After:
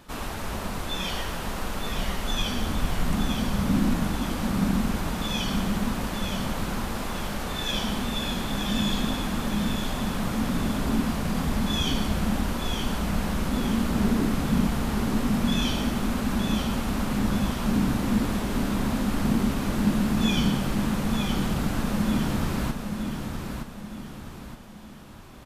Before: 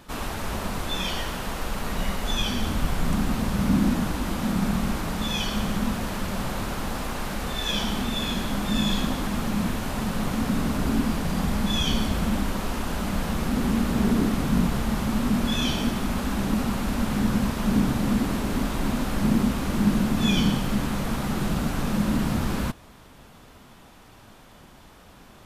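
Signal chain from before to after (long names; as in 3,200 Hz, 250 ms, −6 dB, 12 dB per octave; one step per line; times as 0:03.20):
repeating echo 919 ms, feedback 42%, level −6 dB
level −2 dB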